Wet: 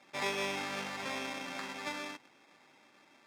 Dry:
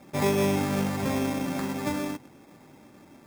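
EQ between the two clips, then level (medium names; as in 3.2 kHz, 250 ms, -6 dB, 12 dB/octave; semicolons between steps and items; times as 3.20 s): band-pass filter 3.6 kHz, Q 0.68; treble shelf 5.3 kHz -9.5 dB; +2.0 dB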